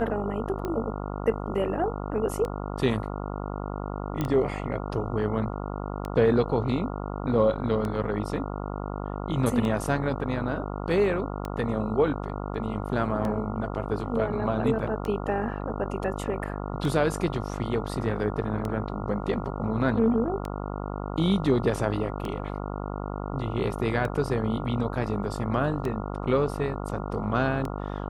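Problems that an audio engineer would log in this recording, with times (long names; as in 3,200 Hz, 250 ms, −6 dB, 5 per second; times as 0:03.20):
mains buzz 50 Hz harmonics 28 −33 dBFS
scratch tick 33 1/3 rpm −19 dBFS
0:04.21: click −15 dBFS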